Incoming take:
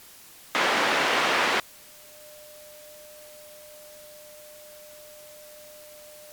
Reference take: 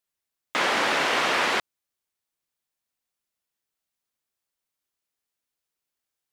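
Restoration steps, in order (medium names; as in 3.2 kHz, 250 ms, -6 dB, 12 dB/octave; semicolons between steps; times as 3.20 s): band-stop 600 Hz, Q 30; noise print and reduce 30 dB; trim 0 dB, from 2.12 s -5.5 dB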